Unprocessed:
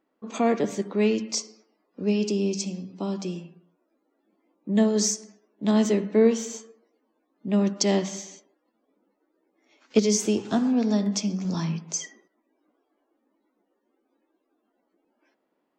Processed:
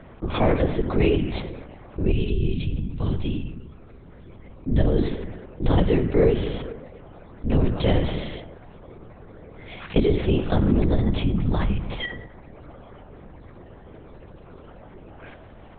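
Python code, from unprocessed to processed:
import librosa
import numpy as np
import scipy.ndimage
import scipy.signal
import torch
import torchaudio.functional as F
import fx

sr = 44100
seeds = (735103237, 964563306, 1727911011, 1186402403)

y = fx.lpc_vocoder(x, sr, seeds[0], excitation='whisper', order=8)
y = fx.peak_eq(y, sr, hz=690.0, db=fx.line((2.11, -13.5), (4.87, -5.0)), octaves=2.7, at=(2.11, 4.87), fade=0.02)
y = fx.env_flatten(y, sr, amount_pct=50)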